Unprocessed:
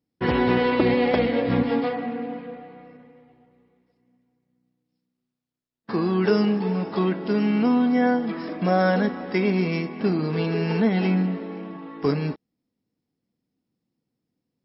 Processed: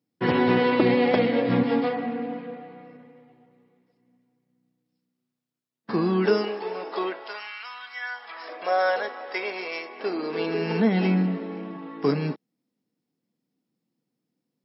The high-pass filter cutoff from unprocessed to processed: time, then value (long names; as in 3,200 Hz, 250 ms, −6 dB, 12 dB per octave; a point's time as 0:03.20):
high-pass filter 24 dB per octave
0:06.03 110 Hz
0:06.52 390 Hz
0:07.06 390 Hz
0:07.58 1,300 Hz
0:08.09 1,300 Hz
0:08.54 510 Hz
0:09.83 510 Hz
0:10.96 140 Hz